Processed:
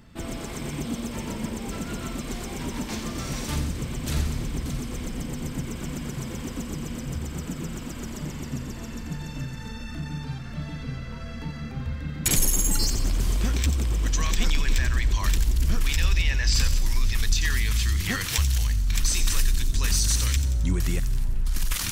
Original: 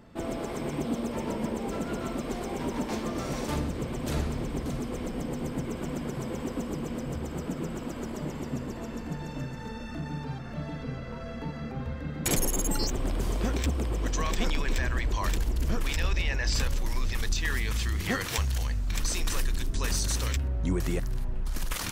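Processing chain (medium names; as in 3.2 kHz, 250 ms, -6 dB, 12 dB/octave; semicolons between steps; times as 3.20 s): peaking EQ 550 Hz -12 dB 2.6 oct; feedback echo behind a high-pass 89 ms, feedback 56%, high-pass 4 kHz, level -7.5 dB; trim +6.5 dB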